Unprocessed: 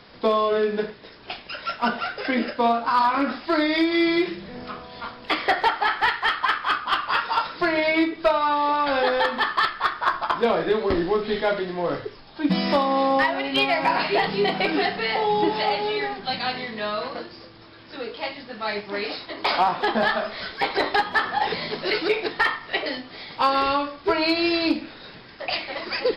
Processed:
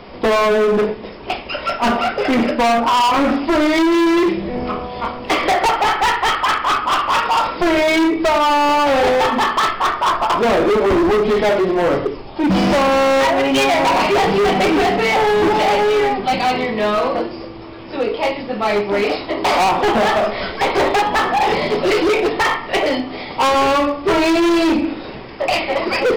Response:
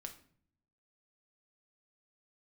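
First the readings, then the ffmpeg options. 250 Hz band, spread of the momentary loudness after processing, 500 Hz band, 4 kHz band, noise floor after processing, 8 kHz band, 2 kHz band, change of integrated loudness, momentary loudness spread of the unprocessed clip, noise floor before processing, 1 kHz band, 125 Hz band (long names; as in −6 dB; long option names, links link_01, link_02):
+8.5 dB, 8 LU, +9.0 dB, +5.0 dB, −32 dBFS, can't be measured, +4.5 dB, +7.0 dB, 12 LU, −45 dBFS, +7.5 dB, +9.0 dB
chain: -filter_complex "[0:a]equalizer=frequency=160:width_type=o:width=0.67:gain=-7,equalizer=frequency=1600:width_type=o:width=0.67:gain=-11,equalizer=frequency=4000:width_type=o:width=0.67:gain=-11,asplit=2[link_01][link_02];[1:a]atrim=start_sample=2205,lowpass=4700[link_03];[link_02][link_03]afir=irnorm=-1:irlink=0,volume=8dB[link_04];[link_01][link_04]amix=inputs=2:normalize=0,asoftclip=type=hard:threshold=-20.5dB,volume=8dB"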